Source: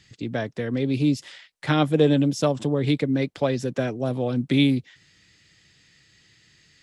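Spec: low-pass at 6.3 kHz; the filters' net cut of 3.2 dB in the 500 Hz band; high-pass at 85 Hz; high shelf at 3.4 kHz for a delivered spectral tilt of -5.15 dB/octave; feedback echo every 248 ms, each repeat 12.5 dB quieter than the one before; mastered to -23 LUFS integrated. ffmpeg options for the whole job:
-af "highpass=85,lowpass=6300,equalizer=f=500:t=o:g=-4,highshelf=f=3400:g=8,aecho=1:1:248|496|744:0.237|0.0569|0.0137,volume=1.19"

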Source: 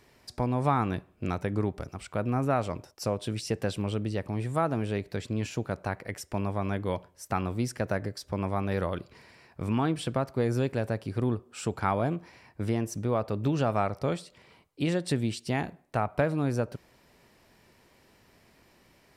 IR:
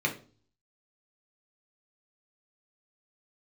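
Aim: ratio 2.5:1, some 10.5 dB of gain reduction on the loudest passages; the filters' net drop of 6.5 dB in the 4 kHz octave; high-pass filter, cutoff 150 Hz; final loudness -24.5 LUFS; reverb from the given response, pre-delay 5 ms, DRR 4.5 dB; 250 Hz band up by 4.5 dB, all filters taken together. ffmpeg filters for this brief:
-filter_complex "[0:a]highpass=150,equalizer=f=250:t=o:g=6.5,equalizer=f=4000:t=o:g=-9,acompressor=threshold=0.0158:ratio=2.5,asplit=2[s0][s1];[1:a]atrim=start_sample=2205,adelay=5[s2];[s1][s2]afir=irnorm=-1:irlink=0,volume=0.2[s3];[s0][s3]amix=inputs=2:normalize=0,volume=3.98"

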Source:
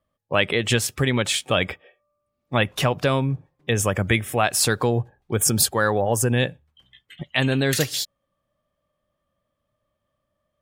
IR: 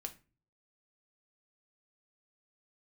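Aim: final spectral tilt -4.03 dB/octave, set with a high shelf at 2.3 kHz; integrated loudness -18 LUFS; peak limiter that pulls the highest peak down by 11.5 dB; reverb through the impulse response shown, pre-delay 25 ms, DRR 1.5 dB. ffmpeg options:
-filter_complex "[0:a]highshelf=f=2300:g=6.5,alimiter=limit=0.251:level=0:latency=1,asplit=2[s0][s1];[1:a]atrim=start_sample=2205,adelay=25[s2];[s1][s2]afir=irnorm=-1:irlink=0,volume=1.19[s3];[s0][s3]amix=inputs=2:normalize=0,volume=1.41"

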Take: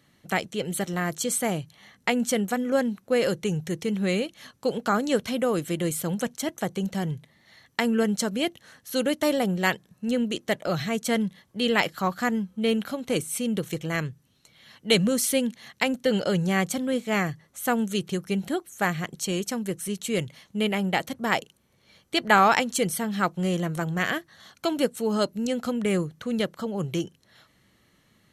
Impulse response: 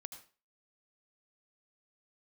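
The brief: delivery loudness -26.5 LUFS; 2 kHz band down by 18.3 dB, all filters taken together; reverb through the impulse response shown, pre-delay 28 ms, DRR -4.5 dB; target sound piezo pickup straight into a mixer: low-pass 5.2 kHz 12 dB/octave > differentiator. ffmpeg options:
-filter_complex "[0:a]equalizer=f=2000:t=o:g=-8.5,asplit=2[s0][s1];[1:a]atrim=start_sample=2205,adelay=28[s2];[s1][s2]afir=irnorm=-1:irlink=0,volume=2.82[s3];[s0][s3]amix=inputs=2:normalize=0,lowpass=5200,aderivative,volume=3.76"

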